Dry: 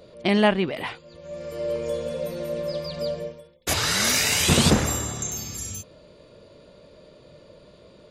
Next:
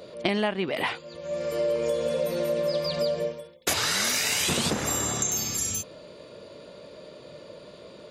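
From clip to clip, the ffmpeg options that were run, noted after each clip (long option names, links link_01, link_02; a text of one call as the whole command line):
ffmpeg -i in.wav -af "highpass=frequency=230:poles=1,acompressor=threshold=-28dB:ratio=16,volume=6dB" out.wav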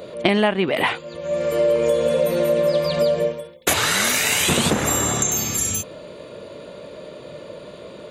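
ffmpeg -i in.wav -af "equalizer=frequency=5100:width=2.7:gain=-9.5,volume=8dB" out.wav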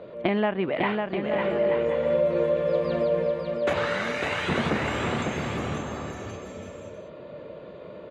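ffmpeg -i in.wav -af "lowpass=2100,aecho=1:1:550|880|1078|1197|1268:0.631|0.398|0.251|0.158|0.1,volume=-6dB" out.wav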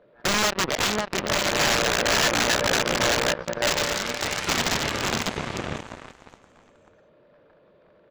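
ffmpeg -i in.wav -af "aresample=16000,aeval=exprs='(mod(9.44*val(0)+1,2)-1)/9.44':channel_layout=same,aresample=44100,aeval=exprs='0.178*(cos(1*acos(clip(val(0)/0.178,-1,1)))-cos(1*PI/2))+0.00316*(cos(3*acos(clip(val(0)/0.178,-1,1)))-cos(3*PI/2))+0.0282*(cos(7*acos(clip(val(0)/0.178,-1,1)))-cos(7*PI/2))':channel_layout=same,volume=3dB" out.wav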